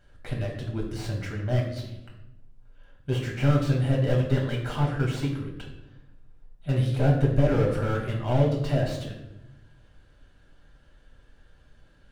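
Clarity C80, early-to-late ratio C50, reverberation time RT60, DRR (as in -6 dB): 8.0 dB, 5.5 dB, 0.85 s, -2.0 dB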